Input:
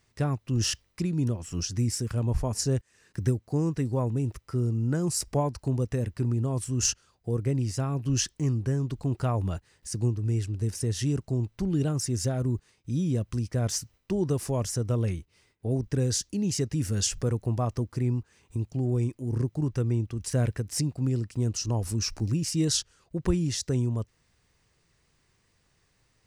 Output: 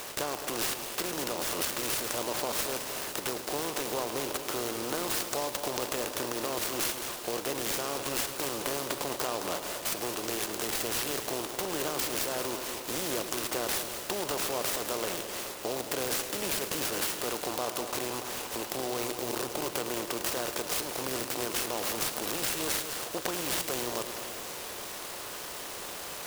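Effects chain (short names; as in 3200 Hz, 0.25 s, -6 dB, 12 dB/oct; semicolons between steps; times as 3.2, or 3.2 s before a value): per-bin compression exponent 0.4; HPF 590 Hz 12 dB/oct; compressor, threshold -28 dBFS, peak gain reduction 9.5 dB; multi-head echo 0.107 s, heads first and second, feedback 65%, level -12.5 dB; noise-modulated delay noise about 4300 Hz, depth 0.054 ms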